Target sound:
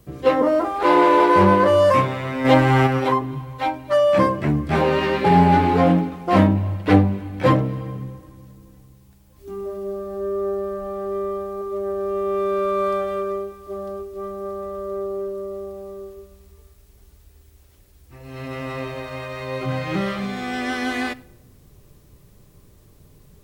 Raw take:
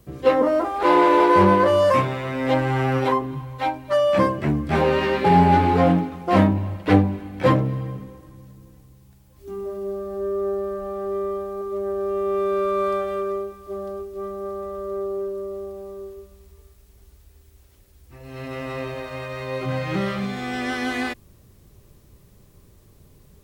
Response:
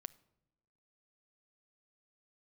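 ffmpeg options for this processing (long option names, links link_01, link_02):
-filter_complex "[1:a]atrim=start_sample=2205[link_01];[0:a][link_01]afir=irnorm=-1:irlink=0,asplit=3[link_02][link_03][link_04];[link_02]afade=type=out:start_time=2.44:duration=0.02[link_05];[link_03]acontrast=53,afade=type=in:start_time=2.44:duration=0.02,afade=type=out:start_time=2.86:duration=0.02[link_06];[link_04]afade=type=in:start_time=2.86:duration=0.02[link_07];[link_05][link_06][link_07]amix=inputs=3:normalize=0,volume=6dB"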